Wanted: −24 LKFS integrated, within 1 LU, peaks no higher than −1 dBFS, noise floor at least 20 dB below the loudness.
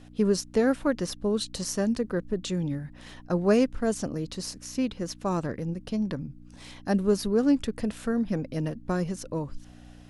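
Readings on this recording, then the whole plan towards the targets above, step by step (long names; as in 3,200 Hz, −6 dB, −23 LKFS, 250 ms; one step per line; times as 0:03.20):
mains hum 60 Hz; hum harmonics up to 300 Hz; level of the hum −49 dBFS; integrated loudness −28.5 LKFS; sample peak −10.0 dBFS; target loudness −24.0 LKFS
→ hum removal 60 Hz, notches 5
level +4.5 dB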